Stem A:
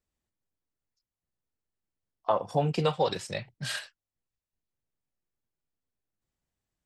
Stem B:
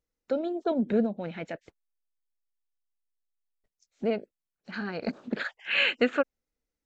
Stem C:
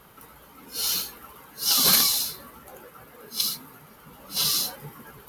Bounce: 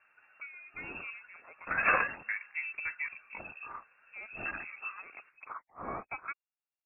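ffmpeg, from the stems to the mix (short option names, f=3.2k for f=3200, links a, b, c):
-filter_complex "[0:a]afwtdn=0.0112,volume=-12.5dB[a];[1:a]lowshelf=f=430:g=-10.5,adelay=100,volume=-14.5dB[b];[2:a]bandreject=f=840:w=13,afwtdn=0.02,equalizer=f=66:w=1.1:g=10,volume=-1dB[c];[a][b][c]amix=inputs=3:normalize=0,equalizer=f=1.5k:t=o:w=1.1:g=7.5,lowpass=f=2.4k:t=q:w=0.5098,lowpass=f=2.4k:t=q:w=0.6013,lowpass=f=2.4k:t=q:w=0.9,lowpass=f=2.4k:t=q:w=2.563,afreqshift=-2800"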